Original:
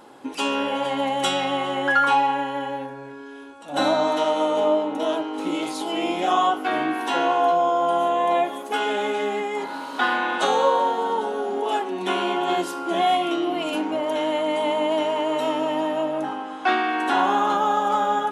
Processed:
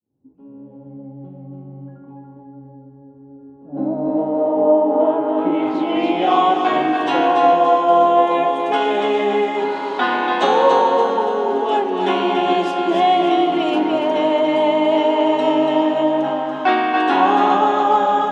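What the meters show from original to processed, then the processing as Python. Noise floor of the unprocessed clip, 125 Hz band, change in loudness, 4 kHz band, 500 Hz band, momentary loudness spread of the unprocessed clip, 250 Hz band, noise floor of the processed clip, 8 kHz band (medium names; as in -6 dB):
-38 dBFS, +6.5 dB, +6.0 dB, +1.0 dB, +6.5 dB, 7 LU, +7.0 dB, -43 dBFS, no reading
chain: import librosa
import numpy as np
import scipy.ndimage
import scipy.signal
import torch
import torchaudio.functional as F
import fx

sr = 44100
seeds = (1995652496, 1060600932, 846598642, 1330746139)

y = fx.fade_in_head(x, sr, length_s=0.72)
y = fx.echo_feedback(y, sr, ms=286, feedback_pct=45, wet_db=-5)
y = fx.dynamic_eq(y, sr, hz=1400.0, q=2.5, threshold_db=-36.0, ratio=4.0, max_db=-5)
y = fx.filter_sweep_lowpass(y, sr, from_hz=120.0, to_hz=5800.0, start_s=3.0, end_s=6.67, q=0.86)
y = fx.high_shelf(y, sr, hz=3800.0, db=-10.5)
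y = y * librosa.db_to_amplitude(6.0)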